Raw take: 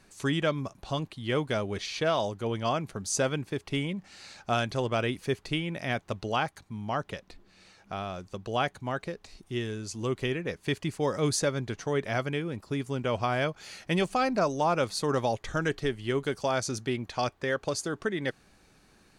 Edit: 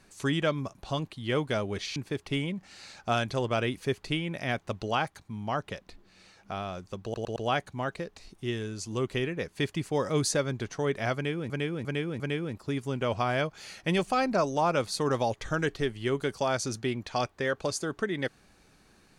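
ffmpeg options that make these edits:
-filter_complex "[0:a]asplit=8[a][b][c][d][e][f][g][h];[a]atrim=end=1.962[i];[b]atrim=start=3.368:end=8.552[j];[c]atrim=start=8.438:end=8.552[k];[d]atrim=start=8.438:end=8.552[l];[e]atrim=start=8.438:end=12.582[m];[f]atrim=start=12.228:end=12.582[n];[g]atrim=start=12.228:end=12.582[o];[h]atrim=start=12.228[p];[i][j]acrossfade=d=0.004:c1=hsin:c2=hsin[q];[q][k]acrossfade=d=0.004:c1=hsin:c2=hsin[r];[r][l]acrossfade=d=0.004:c1=hsin:c2=hsin[s];[s][m]acrossfade=d=0.004:c1=hsin:c2=hsin[t];[t][n]acrossfade=d=0.004:c1=hsin:c2=hsin[u];[u][o]acrossfade=d=0.004:c1=hsin:c2=hsin[v];[v][p]acrossfade=d=0.004:c1=hsin:c2=hsin"

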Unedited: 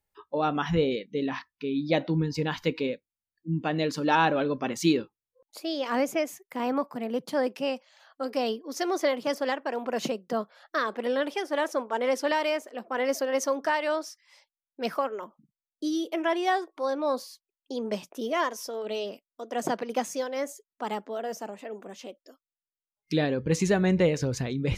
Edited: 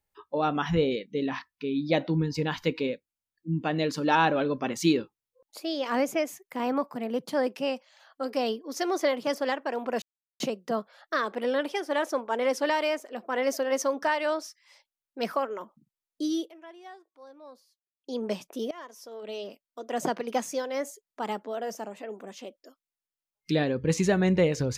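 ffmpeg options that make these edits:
-filter_complex "[0:a]asplit=5[a][b][c][d][e];[a]atrim=end=10.02,asetpts=PTS-STARTPTS,afade=t=out:st=10.016:d=0.004:c=hsin,apad=pad_dur=0.38[f];[b]atrim=start=10.02:end=16.14,asetpts=PTS-STARTPTS,afade=t=in:d=0.004:c=hsin,afade=t=out:st=6:d=0.12:silence=0.0891251[g];[c]atrim=start=16.14:end=17.63,asetpts=PTS-STARTPTS,volume=-21dB[h];[d]atrim=start=17.63:end=18.33,asetpts=PTS-STARTPTS,afade=t=in:d=0.12:silence=0.0891251,afade=t=out:st=0.696:d=0.004:c=hsin:silence=0.0794328[i];[e]atrim=start=18.33,asetpts=PTS-STARTPTS,afade=t=in:d=1.18:silence=0.0794328[j];[f][g][h][i][j]concat=n=5:v=0:a=1"

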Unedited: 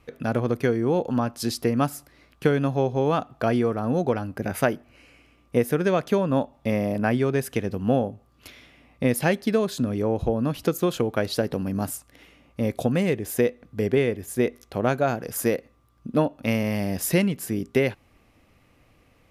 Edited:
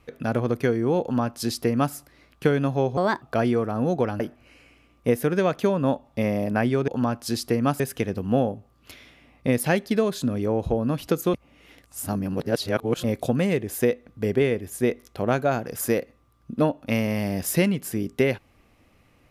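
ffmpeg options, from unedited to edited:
-filter_complex "[0:a]asplit=8[a][b][c][d][e][f][g][h];[a]atrim=end=2.974[i];[b]atrim=start=2.97:end=3.3,asetpts=PTS-STARTPTS,asetrate=58653,aresample=44100,atrim=end_sample=10942,asetpts=PTS-STARTPTS[j];[c]atrim=start=3.296:end=4.282[k];[d]atrim=start=4.678:end=7.362[l];[e]atrim=start=1.018:end=1.942[m];[f]atrim=start=7.358:end=10.902[n];[g]atrim=start=10.898:end=12.602,asetpts=PTS-STARTPTS,areverse[o];[h]atrim=start=12.598[p];[i][j]acrossfade=d=0.004:c1=hsin:c2=hsin[q];[q][k]acrossfade=d=0.004:c1=hsin:c2=hsin[r];[r][l]acrossfade=d=0.004:c1=hsin:c2=hsin[s];[s][m]acrossfade=d=0.004:c1=hsin:c2=hsin[t];[t][n]acrossfade=d=0.004:c1=hsin:c2=hsin[u];[u][o]acrossfade=d=0.004:c1=hsin:c2=hsin[v];[v][p]acrossfade=d=0.004:c1=hsin:c2=hsin"

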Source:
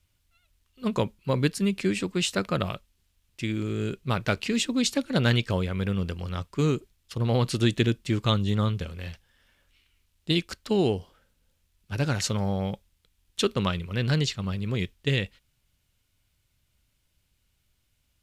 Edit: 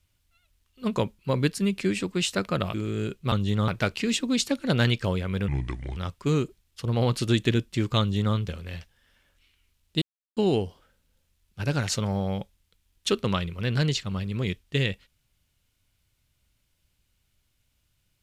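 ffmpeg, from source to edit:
-filter_complex "[0:a]asplit=8[a][b][c][d][e][f][g][h];[a]atrim=end=2.742[i];[b]atrim=start=3.558:end=4.142[j];[c]atrim=start=8.318:end=8.682[k];[d]atrim=start=4.138:end=5.944[l];[e]atrim=start=5.94:end=6.29,asetpts=PTS-STARTPTS,asetrate=31752,aresample=44100[m];[f]atrim=start=6.286:end=10.34,asetpts=PTS-STARTPTS,afade=t=out:st=4.05:d=0.004:c=hsin[n];[g]atrim=start=10.34:end=10.69,asetpts=PTS-STARTPTS,volume=0[o];[h]atrim=start=10.69,asetpts=PTS-STARTPTS,afade=t=in:d=0.004:c=hsin[p];[i][j]acrossfade=d=0.004:c1=hsin:c2=hsin[q];[q][k]acrossfade=d=0.004:c1=hsin:c2=hsin[r];[r][l]acrossfade=d=0.004:c1=hsin:c2=hsin[s];[s][m]acrossfade=d=0.004:c1=hsin:c2=hsin[t];[n][o][p]concat=n=3:v=0:a=1[u];[t][u]acrossfade=d=0.004:c1=hsin:c2=hsin"

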